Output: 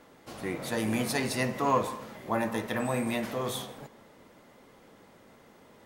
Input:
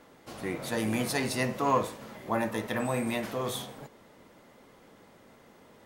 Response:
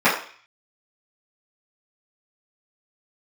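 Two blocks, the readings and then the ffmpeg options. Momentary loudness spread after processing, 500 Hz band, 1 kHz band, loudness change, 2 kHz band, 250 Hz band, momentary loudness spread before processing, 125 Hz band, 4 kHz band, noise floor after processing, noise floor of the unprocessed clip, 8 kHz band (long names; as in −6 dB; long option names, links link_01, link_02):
15 LU, 0.0 dB, 0.0 dB, 0.0 dB, 0.0 dB, +0.5 dB, 16 LU, 0.0 dB, 0.0 dB, −57 dBFS, −57 dBFS, 0.0 dB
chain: -filter_complex "[0:a]asplit=2[link_01][link_02];[1:a]atrim=start_sample=2205,adelay=142[link_03];[link_02][link_03]afir=irnorm=-1:irlink=0,volume=-37.5dB[link_04];[link_01][link_04]amix=inputs=2:normalize=0"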